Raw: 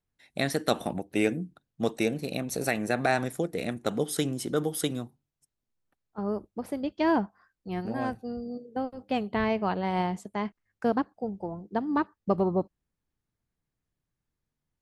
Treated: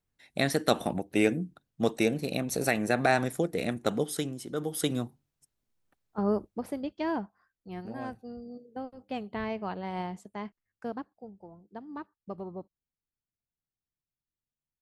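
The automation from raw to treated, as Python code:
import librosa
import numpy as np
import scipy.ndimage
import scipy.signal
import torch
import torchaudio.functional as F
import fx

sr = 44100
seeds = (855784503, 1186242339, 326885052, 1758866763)

y = fx.gain(x, sr, db=fx.line((3.89, 1.0), (4.46, -8.0), (5.01, 3.5), (6.34, 3.5), (7.1, -7.0), (10.42, -7.0), (11.39, -14.0)))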